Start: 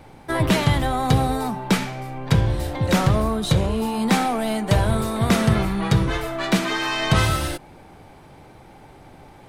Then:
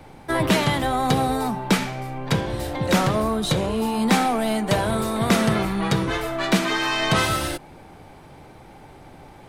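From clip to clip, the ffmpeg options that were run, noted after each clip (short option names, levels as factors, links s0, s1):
-filter_complex "[0:a]acrossover=split=160[s0][s1];[s0]acompressor=threshold=0.0282:ratio=6[s2];[s2][s1]amix=inputs=2:normalize=0,bandreject=f=55.36:t=h:w=4,bandreject=f=110.72:t=h:w=4,volume=1.12"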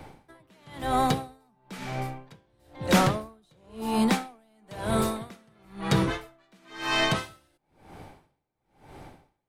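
-af "asoftclip=type=hard:threshold=0.355,aeval=exprs='val(0)*pow(10,-40*(0.5-0.5*cos(2*PI*1*n/s))/20)':c=same"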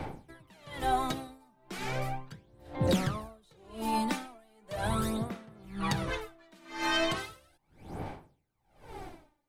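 -af "acompressor=threshold=0.0398:ratio=16,aphaser=in_gain=1:out_gain=1:delay=3.4:decay=0.6:speed=0.37:type=sinusoidal"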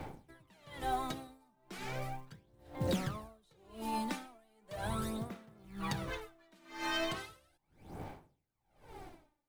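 -af "acrusher=bits=6:mode=log:mix=0:aa=0.000001,volume=0.473"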